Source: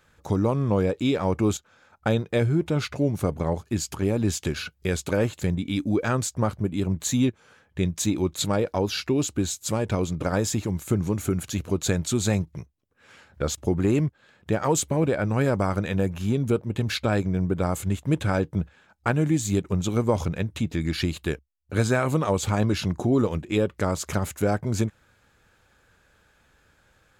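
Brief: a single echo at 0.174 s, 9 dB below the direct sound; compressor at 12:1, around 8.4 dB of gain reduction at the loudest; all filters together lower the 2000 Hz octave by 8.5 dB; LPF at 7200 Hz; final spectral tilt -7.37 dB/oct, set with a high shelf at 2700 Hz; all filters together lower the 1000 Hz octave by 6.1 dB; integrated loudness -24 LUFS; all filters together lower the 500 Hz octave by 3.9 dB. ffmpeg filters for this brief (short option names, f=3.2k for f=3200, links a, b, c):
-af "lowpass=7.2k,equalizer=f=500:t=o:g=-3.5,equalizer=f=1k:t=o:g=-4,equalizer=f=2k:t=o:g=-6.5,highshelf=f=2.7k:g=-8,acompressor=threshold=-27dB:ratio=12,aecho=1:1:174:0.355,volume=9.5dB"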